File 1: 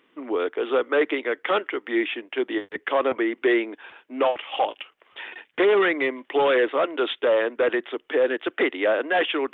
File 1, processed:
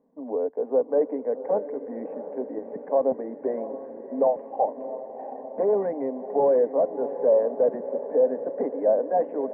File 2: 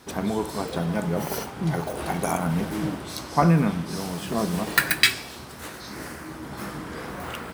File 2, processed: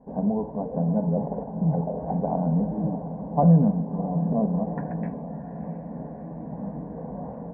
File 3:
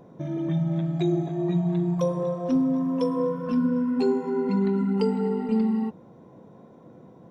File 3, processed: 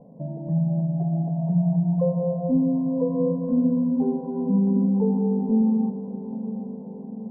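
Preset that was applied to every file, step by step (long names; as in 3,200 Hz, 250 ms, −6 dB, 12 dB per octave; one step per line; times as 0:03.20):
Bessel low-pass filter 710 Hz, order 8
phaser with its sweep stopped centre 350 Hz, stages 6
feedback delay with all-pass diffusion 679 ms, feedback 65%, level −11.5 dB
level +4 dB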